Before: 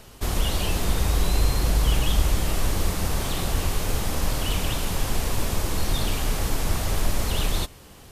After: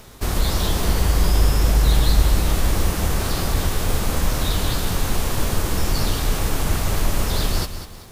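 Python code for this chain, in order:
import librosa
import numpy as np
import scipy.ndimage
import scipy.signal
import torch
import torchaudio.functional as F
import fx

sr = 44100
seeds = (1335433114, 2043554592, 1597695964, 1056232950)

y = fx.formant_shift(x, sr, semitones=4)
y = fx.echo_crushed(y, sr, ms=197, feedback_pct=35, bits=9, wet_db=-10.5)
y = y * librosa.db_to_amplitude(3.0)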